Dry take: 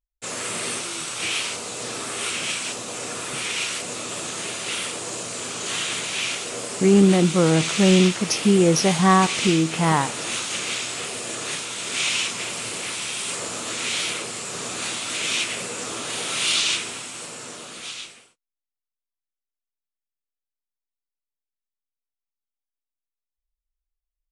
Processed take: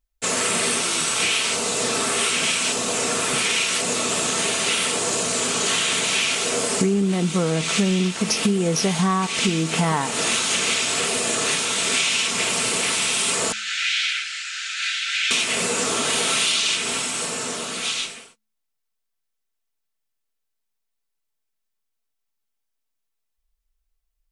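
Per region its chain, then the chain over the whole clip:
13.52–15.31 steep high-pass 1400 Hz 96 dB/oct + air absorption 150 m
whole clip: comb 4.5 ms, depth 38%; de-hum 107.1 Hz, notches 2; compressor 10:1, threshold -26 dBFS; gain +8.5 dB

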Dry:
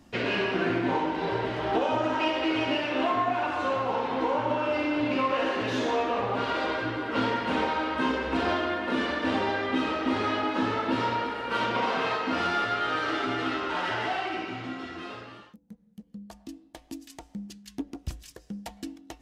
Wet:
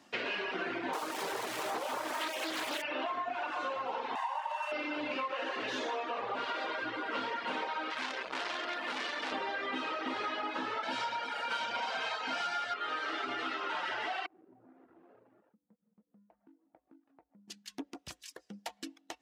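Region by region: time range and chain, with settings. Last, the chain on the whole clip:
0.93–2.82 switching spikes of -24 dBFS + Doppler distortion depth 0.6 ms
4.15–4.72 median filter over 9 samples + steep high-pass 630 Hz + comb 1.1 ms, depth 61%
7.9–9.32 high shelf 4000 Hz +12 dB + core saturation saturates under 2800 Hz
10.83–12.74 HPF 90 Hz + bell 7200 Hz +9 dB 1.8 oct + comb 1.3 ms, depth 51%
14.26–17.48 median filter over 41 samples + LPF 1200 Hz + compressor 2:1, threshold -60 dBFS
whole clip: reverb removal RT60 0.55 s; weighting filter A; compressor, threshold -33 dBFS

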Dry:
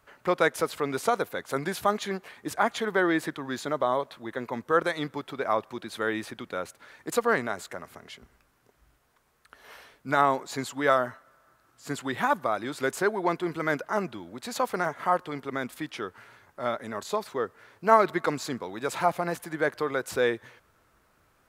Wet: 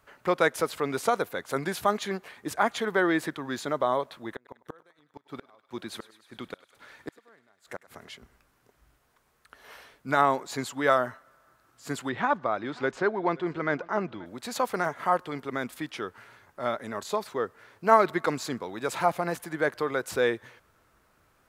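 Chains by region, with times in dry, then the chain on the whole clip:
4.35–8.08 flipped gate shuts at -23 dBFS, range -34 dB + thinning echo 0.101 s, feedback 76%, high-pass 610 Hz, level -17 dB
12.09–14.26 air absorption 160 m + echo 0.531 s -22.5 dB
whole clip: dry

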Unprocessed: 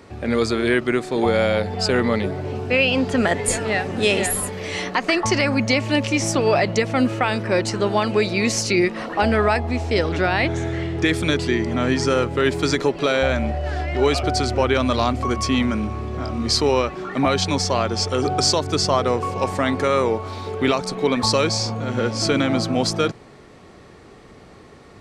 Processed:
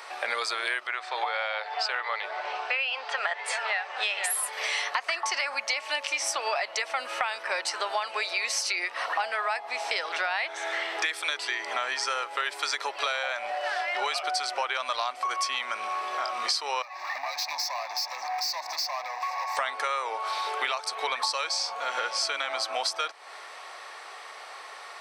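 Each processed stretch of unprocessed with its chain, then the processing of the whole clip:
0.87–4.24 HPF 570 Hz + air absorption 130 m
16.82–19.57 compressor, threshold -25 dBFS + hard clip -30 dBFS + fixed phaser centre 2100 Hz, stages 8
whole clip: HPF 750 Hz 24 dB/oct; notch 6900 Hz, Q 7.4; compressor 6:1, threshold -36 dBFS; gain +9 dB

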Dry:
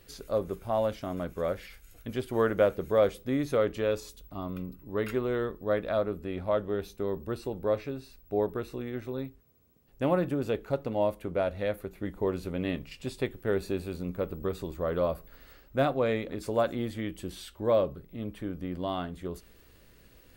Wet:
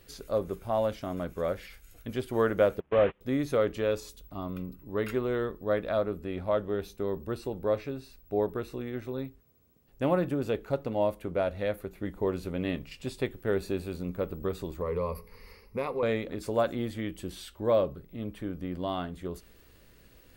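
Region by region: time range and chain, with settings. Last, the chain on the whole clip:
2.8–3.21 delta modulation 16 kbps, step -28.5 dBFS + air absorption 51 m + gate -31 dBFS, range -34 dB
14.81–16.03 ripple EQ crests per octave 0.86, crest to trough 17 dB + compressor 2:1, threshold -31 dBFS
whole clip: dry

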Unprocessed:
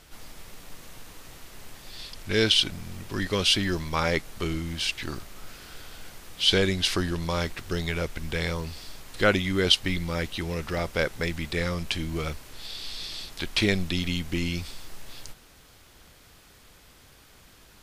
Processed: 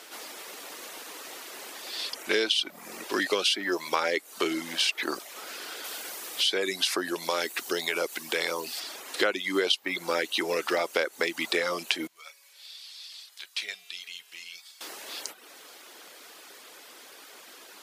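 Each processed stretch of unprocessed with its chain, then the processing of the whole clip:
5.84–8.8 high shelf 7800 Hz +8.5 dB + compressor 1.5:1, threshold -35 dBFS
12.07–14.81 passive tone stack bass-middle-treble 10-0-10 + resonator 140 Hz, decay 1.8 s, mix 80%
whole clip: reverb removal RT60 0.57 s; HPF 320 Hz 24 dB/oct; compressor 8:1, threshold -31 dBFS; gain +8.5 dB

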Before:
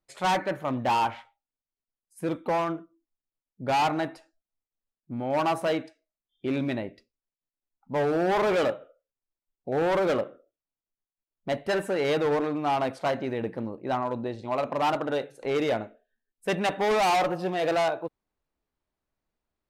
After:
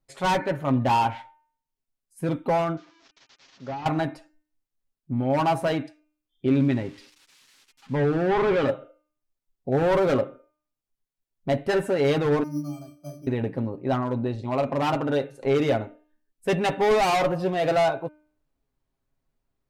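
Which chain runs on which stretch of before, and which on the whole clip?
2.77–3.86 delta modulation 32 kbps, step -47.5 dBFS + HPF 880 Hz 6 dB/oct
6.49–8.68 switching spikes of -31 dBFS + LPF 3300 Hz + bell 650 Hz -7.5 dB 0.46 oct
12.43–13.27 octave resonator D, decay 0.39 s + careless resampling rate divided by 8×, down filtered, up hold
whole clip: low shelf 280 Hz +9 dB; comb 7.4 ms, depth 47%; de-hum 303.4 Hz, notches 10

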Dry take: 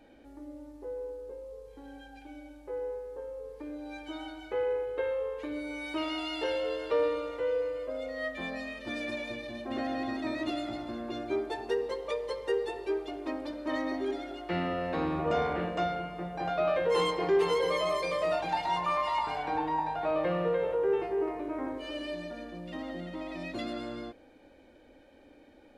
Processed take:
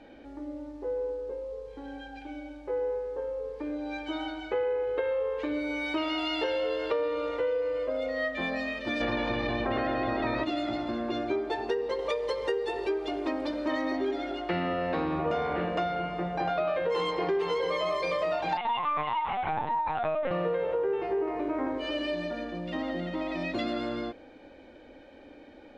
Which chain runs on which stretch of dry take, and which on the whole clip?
9–10.43 spectral limiter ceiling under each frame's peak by 16 dB + tape spacing loss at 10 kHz 30 dB + fast leveller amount 50%
11.99–13.97 high shelf 7900 Hz +9.5 dB + upward compressor, threshold -34 dBFS
18.57–20.31 HPF 440 Hz + LPC vocoder at 8 kHz pitch kept
whole clip: LPF 5000 Hz 12 dB/oct; low shelf 150 Hz -3.5 dB; compressor, threshold -33 dBFS; gain +7 dB

